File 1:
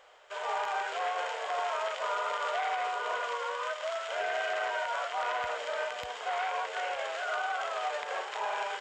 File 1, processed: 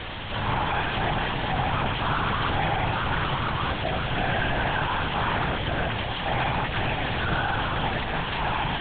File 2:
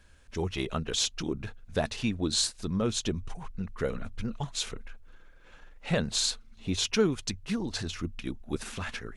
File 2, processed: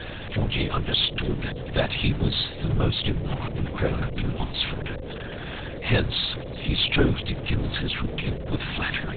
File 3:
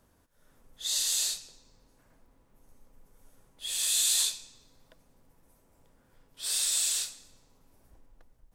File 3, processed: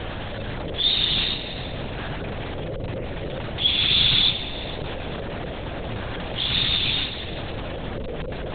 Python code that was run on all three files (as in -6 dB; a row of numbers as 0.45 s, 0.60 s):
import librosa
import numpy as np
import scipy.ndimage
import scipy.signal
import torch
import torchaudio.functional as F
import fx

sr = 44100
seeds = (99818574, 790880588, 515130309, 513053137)

y = x + 0.5 * 10.0 ** (-34.5 / 20.0) * np.sign(x)
y = fx.high_shelf(y, sr, hz=2200.0, db=9.5)
y = y + 10.0 ** (-43.0 / 20.0) * np.sin(2.0 * np.pi * 530.0 * np.arange(len(y)) / sr)
y = fx.lpc_vocoder(y, sr, seeds[0], excitation='whisper', order=8)
y = fx.dynamic_eq(y, sr, hz=130.0, q=1.6, threshold_db=-46.0, ratio=4.0, max_db=6)
y = y * 10.0 ** (-26 / 20.0) / np.sqrt(np.mean(np.square(y)))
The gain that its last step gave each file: +2.0 dB, +2.5 dB, +8.0 dB